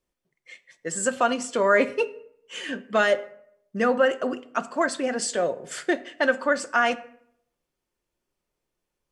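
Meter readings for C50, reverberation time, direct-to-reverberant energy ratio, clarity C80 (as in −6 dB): 18.0 dB, 0.65 s, 9.0 dB, 20.5 dB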